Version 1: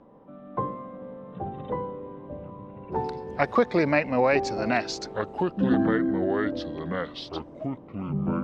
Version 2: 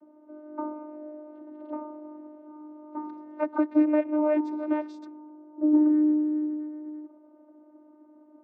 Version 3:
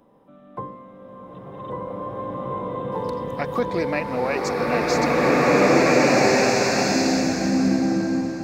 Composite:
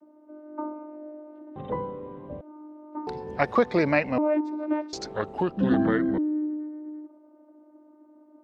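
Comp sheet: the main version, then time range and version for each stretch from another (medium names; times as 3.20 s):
2
1.56–2.41 s: from 1
3.07–4.18 s: from 1
4.93–6.18 s: from 1
not used: 3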